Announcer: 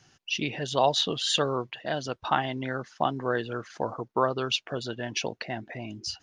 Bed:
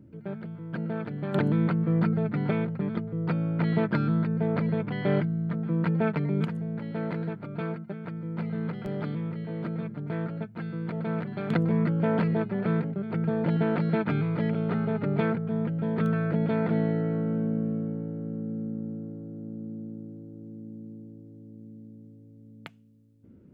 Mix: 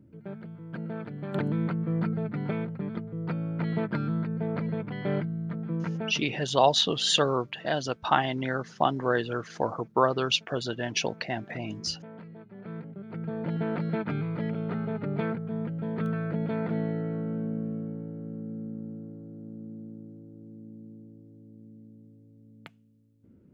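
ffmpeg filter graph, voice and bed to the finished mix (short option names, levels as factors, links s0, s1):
-filter_complex "[0:a]adelay=5800,volume=1.26[s0];[1:a]volume=4.22,afade=t=out:st=5.75:d=0.62:silence=0.149624,afade=t=in:st=12.43:d=1.32:silence=0.149624[s1];[s0][s1]amix=inputs=2:normalize=0"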